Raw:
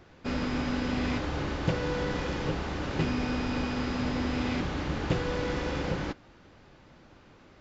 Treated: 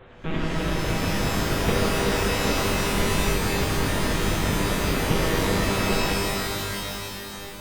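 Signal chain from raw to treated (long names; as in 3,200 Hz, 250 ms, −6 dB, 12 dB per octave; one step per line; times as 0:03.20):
in parallel at −6 dB: wrap-around overflow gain 28.5 dB
on the sum: reverb reduction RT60 1 s
one-pitch LPC vocoder at 8 kHz 160 Hz
reverb with rising layers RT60 2.9 s, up +12 semitones, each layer −2 dB, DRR −2.5 dB
level +3 dB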